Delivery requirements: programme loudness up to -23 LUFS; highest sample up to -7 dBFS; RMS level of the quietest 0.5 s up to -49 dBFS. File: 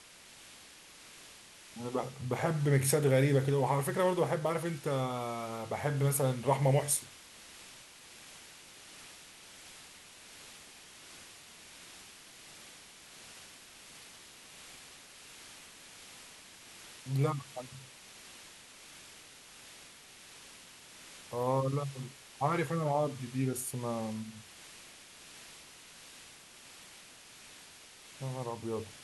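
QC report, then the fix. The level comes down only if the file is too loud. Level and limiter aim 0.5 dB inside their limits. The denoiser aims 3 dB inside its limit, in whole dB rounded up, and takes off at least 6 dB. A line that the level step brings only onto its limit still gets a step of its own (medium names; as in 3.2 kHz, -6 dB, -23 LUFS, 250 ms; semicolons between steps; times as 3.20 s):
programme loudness -32.5 LUFS: pass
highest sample -15.0 dBFS: pass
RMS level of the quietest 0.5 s -55 dBFS: pass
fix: none needed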